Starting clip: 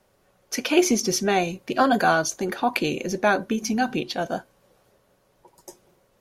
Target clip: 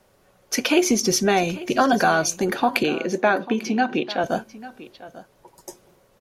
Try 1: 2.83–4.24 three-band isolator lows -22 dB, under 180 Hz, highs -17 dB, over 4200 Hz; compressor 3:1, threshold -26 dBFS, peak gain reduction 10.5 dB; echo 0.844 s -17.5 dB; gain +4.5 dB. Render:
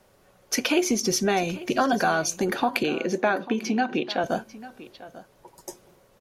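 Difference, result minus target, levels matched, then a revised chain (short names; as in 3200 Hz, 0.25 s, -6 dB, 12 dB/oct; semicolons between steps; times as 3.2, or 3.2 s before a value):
compressor: peak gain reduction +4.5 dB
2.83–4.24 three-band isolator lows -22 dB, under 180 Hz, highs -17 dB, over 4200 Hz; compressor 3:1, threshold -19.5 dBFS, peak gain reduction 6 dB; echo 0.844 s -17.5 dB; gain +4.5 dB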